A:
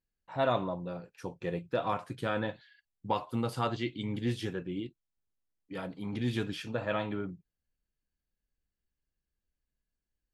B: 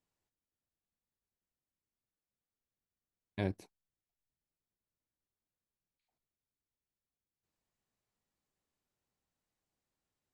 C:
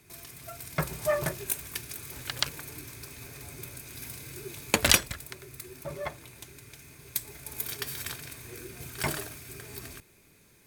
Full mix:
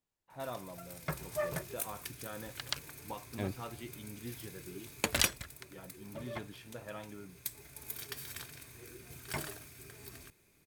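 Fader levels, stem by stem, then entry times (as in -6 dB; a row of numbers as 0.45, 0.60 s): -13.0, -2.5, -8.0 dB; 0.00, 0.00, 0.30 s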